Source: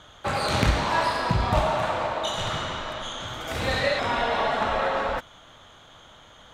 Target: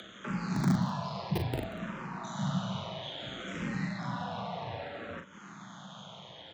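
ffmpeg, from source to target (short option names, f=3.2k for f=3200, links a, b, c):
-filter_complex "[0:a]aresample=16000,asoftclip=type=hard:threshold=-17.5dB,aresample=44100,highpass=f=76:w=0.5412,highpass=f=76:w=1.3066,acrossover=split=130[a][b];[a]aeval=exprs='(mod(17.8*val(0)+1,2)-1)/17.8':c=same[c];[b]acompressor=threshold=-37dB:ratio=6[d];[c][d]amix=inputs=2:normalize=0,tremolo=f=120:d=0.4,equalizer=f=160:w=2.8:g=14.5,afreqshift=31,aecho=1:1:41|185:0.473|0.158,acompressor=mode=upward:threshold=-42dB:ratio=2.5,asplit=2[e][f];[f]afreqshift=-0.6[g];[e][g]amix=inputs=2:normalize=1,volume=2dB"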